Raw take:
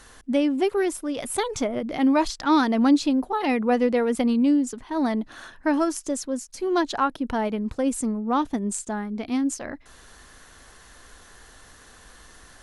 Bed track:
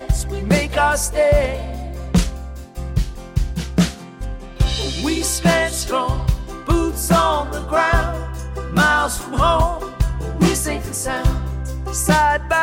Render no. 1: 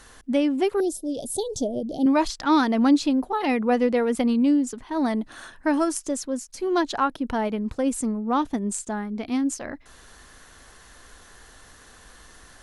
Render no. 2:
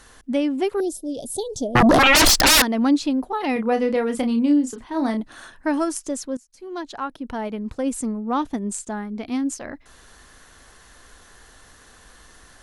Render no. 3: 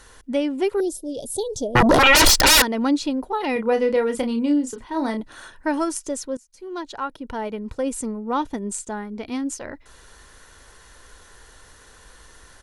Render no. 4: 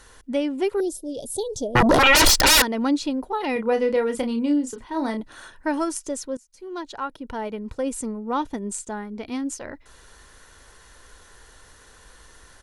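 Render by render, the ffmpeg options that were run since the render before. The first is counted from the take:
-filter_complex "[0:a]asettb=1/sr,asplit=3[s0][s1][s2];[s0]atrim=end=0.804[s3];[s1]atrim=start=0.8:end=2.06,asetpts=PTS-STARTPTS,afade=t=in:d=0.004:c=qsin,afade=t=out:st=1.256:d=0.004:c=qsin,asuperstop=centerf=1600:order=8:qfactor=0.55[s4];[s2]atrim=start=2.056[s5];[s3][s4]acrossfade=d=0.004:c1=hsin:c2=qsin[s6];[s6][s5]acrossfade=d=0.004:c1=qsin:c2=hsin,asettb=1/sr,asplit=3[s7][s8][s9];[s7]atrim=end=5.084[s10];[s8]atrim=start=5.08:end=5.98,asetpts=PTS-STARTPTS,afade=t=in:d=0.004:c=qsin,afade=t=out:st=0.896:d=0.004:c=qsin,equalizer=f=8900:w=2.3:g=7[s11];[s9]atrim=start=5.976[s12];[s10][s11]acrossfade=d=0.004:c1=hsin:c2=qsin[s13];[s13][s12]acrossfade=d=0.004:c1=qsin:c2=hsin"
-filter_complex "[0:a]asettb=1/sr,asplit=3[s0][s1][s2];[s0]atrim=end=1.754[s3];[s1]atrim=start=1.75:end=2.62,asetpts=PTS-STARTPTS,afade=t=in:d=0.004:c=qsin,afade=t=out:st=0.866:d=0.004:c=qsin,aeval=exprs='0.299*sin(PI/2*10*val(0)/0.299)':c=same[s4];[s2]atrim=start=2.616[s5];[s3][s4]acrossfade=d=0.004:c1=hsin:c2=qsin[s6];[s6][s5]acrossfade=d=0.004:c1=qsin:c2=hsin,asettb=1/sr,asplit=3[s7][s8][s9];[s7]atrim=end=3.534[s10];[s8]atrim=start=3.53:end=5.2,asetpts=PTS-STARTPTS,afade=t=in:d=0.004:c=qsin,afade=t=out:st=1.666:d=0.004:c=qsin,asplit=2[s11][s12];[s12]adelay=31,volume=0.447[s13];[s11][s13]amix=inputs=2:normalize=0,atrim=end_sample=73647[s14];[s9]atrim=start=5.196[s15];[s10][s14]acrossfade=d=0.004:c1=hsin:c2=qsin[s16];[s16][s15]acrossfade=d=0.004:c1=qsin:c2=hsin,asplit=2[s17][s18];[s17]atrim=end=6.37,asetpts=PTS-STARTPTS,afade=t=out:st=6.366:d=0.004:c=hsin:silence=0.133352[s19];[s18]atrim=start=6.37,asetpts=PTS-STARTPTS,afade=t=in:d=1.56:silence=0.133352[s20];[s19][s20]concat=n=2:v=0:a=1"
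-af "aecho=1:1:2.1:0.32"
-af "volume=0.841"

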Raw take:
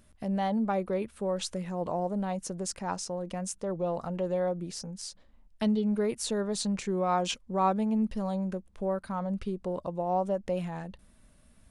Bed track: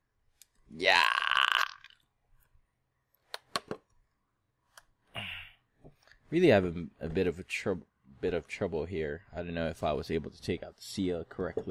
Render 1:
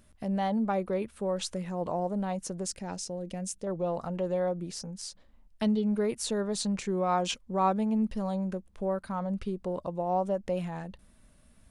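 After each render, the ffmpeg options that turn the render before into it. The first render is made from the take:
-filter_complex "[0:a]asettb=1/sr,asplit=3[s0][s1][s2];[s0]atrim=end=2.684[s3];[s1]atrim=start=2.68:end=3.67,asetpts=PTS-STARTPTS,afade=t=in:d=0.004:c=qsin,afade=t=out:st=0.986:d=0.004:c=qsin,equalizer=f=1100:w=1.4:g=-12.5[s4];[s2]atrim=start=3.666[s5];[s3][s4]acrossfade=d=0.004:c1=hsin:c2=qsin[s6];[s6][s5]acrossfade=d=0.004:c1=qsin:c2=hsin"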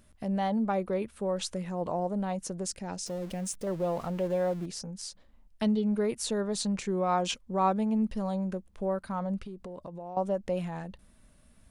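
-filter_complex "[0:a]asettb=1/sr,asplit=3[s0][s1][s2];[s0]atrim=end=3.064[s3];[s1]atrim=start=3.06:end=4.66,asetpts=PTS-STARTPTS,afade=t=in:d=0.004:c=qsin,afade=t=out:st=1.596:d=0.004:c=qsin,aeval=exprs='val(0)+0.5*0.00668*sgn(val(0))':c=same[s4];[s2]atrim=start=4.656[s5];[s3][s4]acrossfade=d=0.004:c1=hsin:c2=qsin[s6];[s6][s5]acrossfade=d=0.004:c1=qsin:c2=hsin,asettb=1/sr,asplit=3[s7][s8][s9];[s7]atrim=end=9.374[s10];[s8]atrim=start=9.37:end=10.17,asetpts=PTS-STARTPTS,afade=t=in:d=0.004:c=qsin,afade=t=out:st=0.796:d=0.004:c=qsin,acompressor=threshold=0.0126:ratio=6:attack=3.2:release=140:knee=1:detection=peak[s11];[s9]atrim=start=10.166[s12];[s10][s11]acrossfade=d=0.004:c1=hsin:c2=qsin[s13];[s13][s12]acrossfade=d=0.004:c1=qsin:c2=hsin"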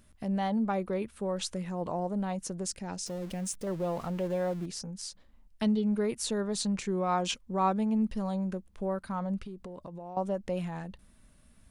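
-af "equalizer=f=590:w=1.5:g=-3"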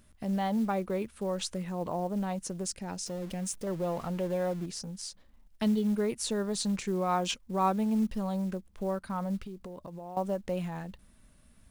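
-af "acrusher=bits=7:mode=log:mix=0:aa=0.000001"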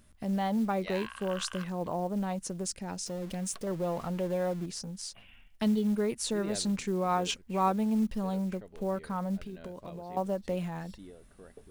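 -filter_complex "[1:a]volume=0.133[s0];[0:a][s0]amix=inputs=2:normalize=0"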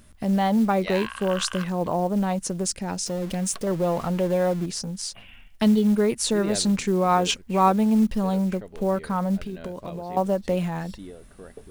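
-af "volume=2.66"

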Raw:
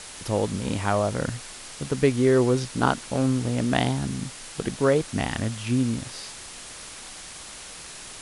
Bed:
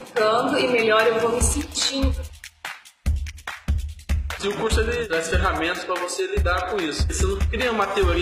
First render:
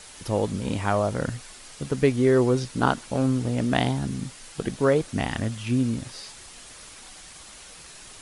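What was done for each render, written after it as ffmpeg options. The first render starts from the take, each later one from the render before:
-af "afftdn=nr=6:nf=-41"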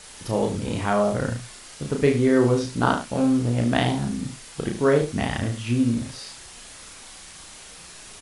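-filter_complex "[0:a]asplit=2[s0][s1];[s1]adelay=34,volume=0.631[s2];[s0][s2]amix=inputs=2:normalize=0,aecho=1:1:73:0.316"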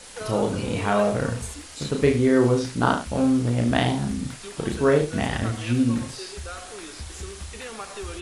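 -filter_complex "[1:a]volume=0.168[s0];[0:a][s0]amix=inputs=2:normalize=0"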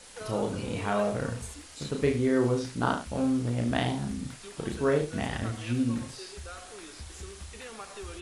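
-af "volume=0.473"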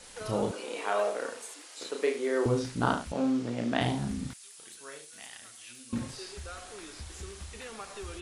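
-filter_complex "[0:a]asettb=1/sr,asplit=3[s0][s1][s2];[s0]atrim=end=0.514[s3];[s1]atrim=start=0.51:end=2.46,asetpts=PTS-STARTPTS,afade=t=in:d=0.004:c=qsin,afade=t=out:st=1.946:d=0.004:c=qsin,highpass=f=360:w=0.5412,highpass=f=360:w=1.3066[s4];[s2]atrim=start=2.456[s5];[s3][s4]acrossfade=d=0.004:c1=hsin:c2=qsin[s6];[s6][s5]acrossfade=d=0.004:c1=qsin:c2=hsin,asettb=1/sr,asplit=3[s7][s8][s9];[s7]atrim=end=3.124[s10];[s8]atrim=start=3.12:end=3.81,asetpts=PTS-STARTPTS,afade=t=in:d=0.004:c=qsin,afade=t=out:st=0.686:d=0.004:c=qsin,acrossover=split=160 7800:gain=0.0708 1 0.141[s11][s12][s13];[s11][s12][s13]amix=inputs=3:normalize=0[s14];[s9]atrim=start=3.806[s15];[s10][s14]acrossfade=d=0.004:c1=hsin:c2=qsin[s16];[s16][s15]acrossfade=d=0.004:c1=qsin:c2=hsin,asettb=1/sr,asplit=3[s17][s18][s19];[s17]atrim=end=4.334[s20];[s18]atrim=start=4.33:end=5.93,asetpts=PTS-STARTPTS,afade=t=in:d=0.004:c=qsin,afade=t=out:st=1.596:d=0.004:c=qsin,aderivative[s21];[s19]atrim=start=5.926[s22];[s20][s21]acrossfade=d=0.004:c1=hsin:c2=qsin[s23];[s23][s22]acrossfade=d=0.004:c1=qsin:c2=hsin"

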